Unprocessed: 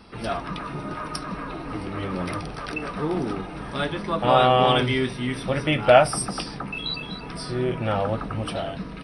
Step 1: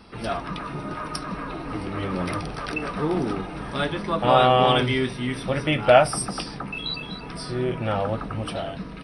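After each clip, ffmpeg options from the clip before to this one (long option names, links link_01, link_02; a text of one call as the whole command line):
ffmpeg -i in.wav -af "dynaudnorm=framelen=850:gausssize=5:maxgain=3dB" out.wav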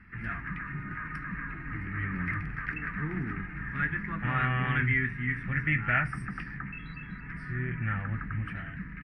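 ffmpeg -i in.wav -filter_complex "[0:a]asplit=2[link_01][link_02];[link_02]asoftclip=type=tanh:threshold=-11.5dB,volume=-7.5dB[link_03];[link_01][link_03]amix=inputs=2:normalize=0,firequalizer=gain_entry='entry(130,0);entry(550,-28);entry(1800,10);entry(3500,-29)':delay=0.05:min_phase=1,volume=-4.5dB" out.wav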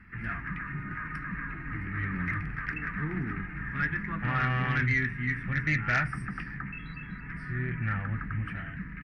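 ffmpeg -i in.wav -af "aeval=exprs='0.266*sin(PI/2*1.58*val(0)/0.266)':channel_layout=same,volume=-7dB" out.wav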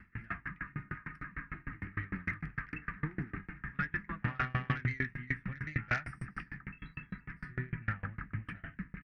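ffmpeg -i in.wav -af "aeval=exprs='val(0)*pow(10,-30*if(lt(mod(6.6*n/s,1),2*abs(6.6)/1000),1-mod(6.6*n/s,1)/(2*abs(6.6)/1000),(mod(6.6*n/s,1)-2*abs(6.6)/1000)/(1-2*abs(6.6)/1000))/20)':channel_layout=same,volume=1dB" out.wav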